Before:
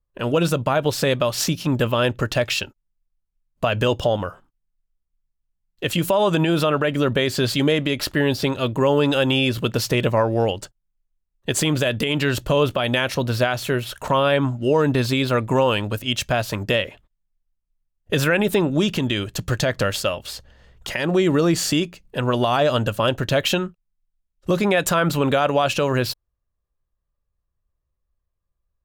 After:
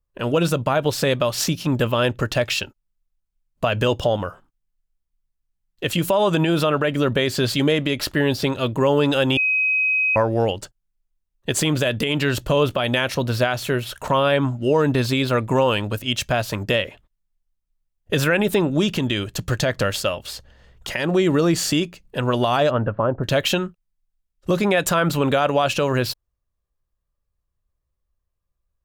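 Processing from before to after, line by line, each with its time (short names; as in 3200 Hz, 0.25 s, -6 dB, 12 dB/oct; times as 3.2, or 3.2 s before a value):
9.37–10.16 bleep 2530 Hz -16.5 dBFS
22.69–23.23 LPF 2100 Hz -> 1100 Hz 24 dB/oct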